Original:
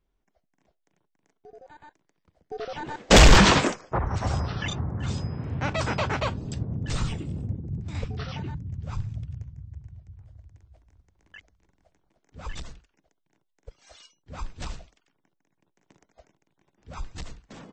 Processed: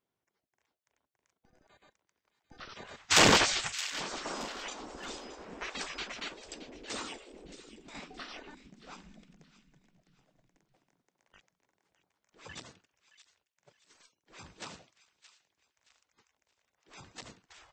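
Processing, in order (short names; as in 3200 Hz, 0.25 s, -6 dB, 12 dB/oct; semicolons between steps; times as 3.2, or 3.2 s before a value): spectral gate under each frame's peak -15 dB weak; thin delay 0.622 s, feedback 33%, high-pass 1900 Hz, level -13 dB; gain -3 dB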